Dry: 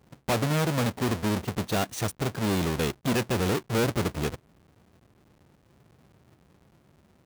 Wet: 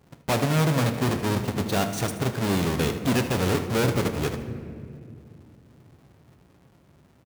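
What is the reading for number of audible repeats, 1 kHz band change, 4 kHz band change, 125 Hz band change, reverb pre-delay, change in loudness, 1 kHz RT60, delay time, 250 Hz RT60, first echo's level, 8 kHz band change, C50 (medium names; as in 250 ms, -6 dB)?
1, +2.5 dB, +2.0 dB, +4.0 dB, 7 ms, +2.5 dB, 1.9 s, 77 ms, 3.9 s, -14.0 dB, +2.0 dB, 8.0 dB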